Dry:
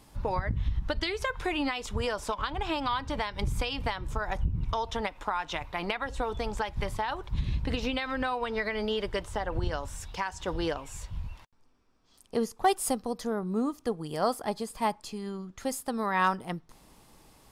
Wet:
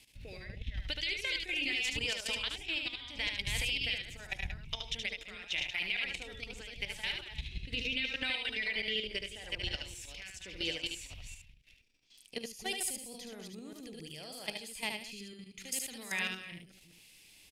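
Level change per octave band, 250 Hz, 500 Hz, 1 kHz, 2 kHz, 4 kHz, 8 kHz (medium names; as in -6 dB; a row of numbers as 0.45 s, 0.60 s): -13.5 dB, -14.5 dB, -20.5 dB, 0.0 dB, +4.0 dB, -0.5 dB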